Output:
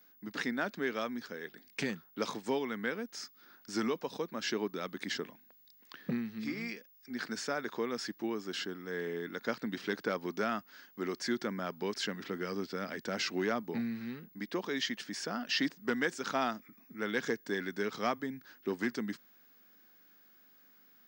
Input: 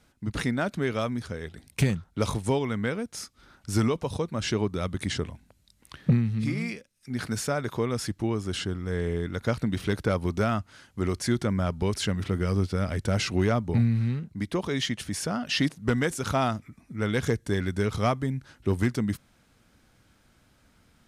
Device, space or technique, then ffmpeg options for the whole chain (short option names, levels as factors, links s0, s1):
old television with a line whistle: -af "highpass=f=220:w=0.5412,highpass=f=220:w=1.3066,equalizer=f=600:t=q:w=4:g=-3,equalizer=f=1700:t=q:w=4:g=6,equalizer=f=4900:t=q:w=4:g=4,lowpass=f=6900:w=0.5412,lowpass=f=6900:w=1.3066,aeval=exprs='val(0)+0.002*sin(2*PI*15625*n/s)':c=same,volume=0.501"